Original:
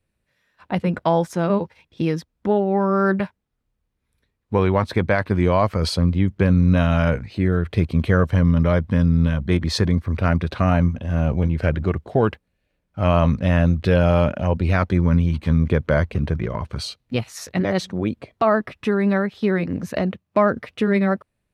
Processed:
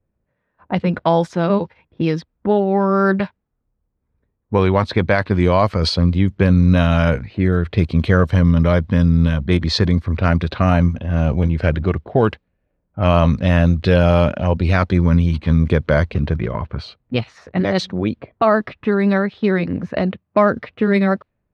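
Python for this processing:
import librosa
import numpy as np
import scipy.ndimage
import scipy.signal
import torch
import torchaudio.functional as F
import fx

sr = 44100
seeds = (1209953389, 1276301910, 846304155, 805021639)

y = fx.env_lowpass(x, sr, base_hz=990.0, full_db=-13.0)
y = fx.dynamic_eq(y, sr, hz=4100.0, q=1.7, threshold_db=-49.0, ratio=4.0, max_db=5)
y = F.gain(torch.from_numpy(y), 3.0).numpy()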